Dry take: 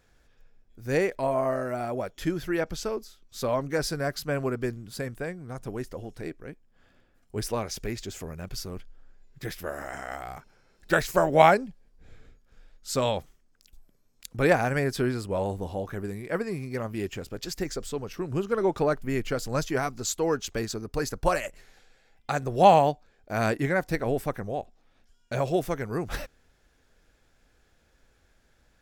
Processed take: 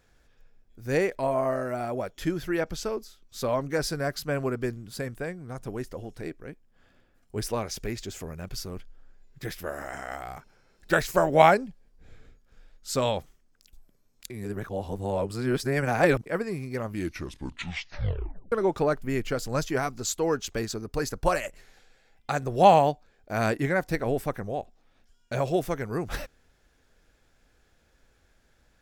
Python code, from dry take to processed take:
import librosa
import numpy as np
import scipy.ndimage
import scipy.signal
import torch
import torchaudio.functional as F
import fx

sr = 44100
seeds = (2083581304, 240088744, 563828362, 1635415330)

y = fx.edit(x, sr, fx.reverse_span(start_s=14.3, length_s=1.96),
    fx.tape_stop(start_s=16.85, length_s=1.67), tone=tone)